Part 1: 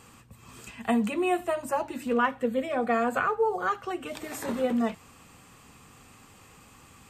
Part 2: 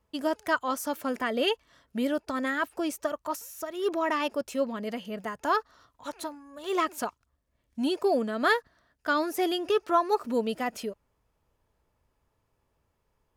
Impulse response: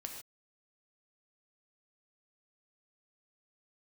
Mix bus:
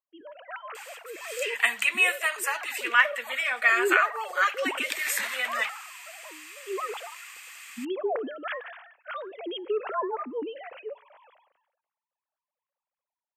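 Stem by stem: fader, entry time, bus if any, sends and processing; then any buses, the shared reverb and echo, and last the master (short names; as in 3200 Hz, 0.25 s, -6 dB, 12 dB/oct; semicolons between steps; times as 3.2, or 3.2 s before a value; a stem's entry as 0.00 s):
+1.5 dB, 0.75 s, no send, resonant high-pass 2000 Hz, resonance Q 2.6
-14.5 dB, 0.00 s, send -19 dB, sine-wave speech; sustainer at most 58 dB/s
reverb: on, pre-delay 3 ms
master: high shelf 11000 Hz +6.5 dB; AGC gain up to 6.5 dB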